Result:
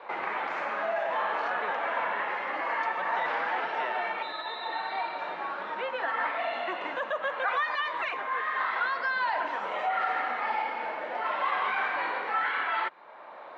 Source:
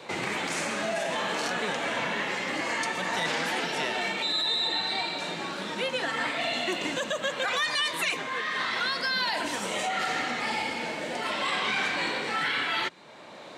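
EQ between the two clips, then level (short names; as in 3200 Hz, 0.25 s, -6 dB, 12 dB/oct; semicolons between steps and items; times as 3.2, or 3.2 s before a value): band-pass 1100 Hz, Q 0.88; air absorption 150 m; bell 960 Hz +9.5 dB 2.9 oct; -4.5 dB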